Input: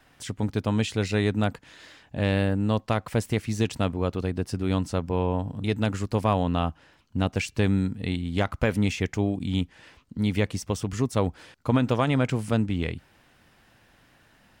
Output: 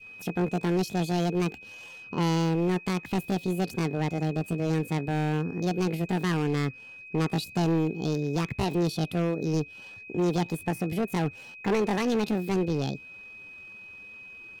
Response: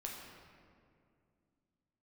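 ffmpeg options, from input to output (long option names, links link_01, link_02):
-af "highshelf=frequency=2100:gain=-9.5,aeval=exprs='val(0)+0.00562*sin(2*PI*1500*n/s)':channel_layout=same,volume=22.5dB,asoftclip=hard,volume=-22.5dB,asetrate=74167,aresample=44100,atempo=0.594604,adynamicequalizer=threshold=0.00562:dfrequency=1100:dqfactor=0.93:tfrequency=1100:tqfactor=0.93:attack=5:release=100:ratio=0.375:range=4:mode=cutabove:tftype=bell,volume=2dB"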